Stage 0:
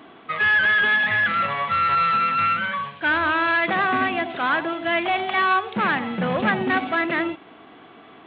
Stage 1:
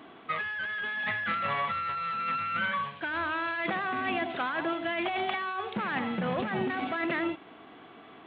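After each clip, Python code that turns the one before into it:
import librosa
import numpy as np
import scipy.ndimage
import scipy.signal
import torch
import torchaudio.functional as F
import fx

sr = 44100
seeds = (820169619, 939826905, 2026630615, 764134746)

y = fx.over_compress(x, sr, threshold_db=-24.0, ratio=-1.0)
y = F.gain(torch.from_numpy(y), -7.0).numpy()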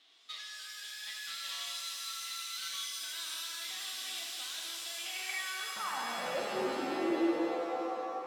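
y = fx.halfwave_hold(x, sr)
y = fx.filter_sweep_bandpass(y, sr, from_hz=3600.0, to_hz=360.0, start_s=4.94, end_s=6.72, q=4.6)
y = fx.rev_shimmer(y, sr, seeds[0], rt60_s=2.8, semitones=7, shimmer_db=-2, drr_db=-0.5)
y = F.gain(torch.from_numpy(y), -4.0).numpy()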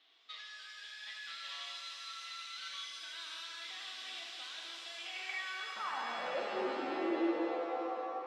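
y = fx.bandpass_edges(x, sr, low_hz=270.0, high_hz=3700.0)
y = F.gain(torch.from_numpy(y), -1.5).numpy()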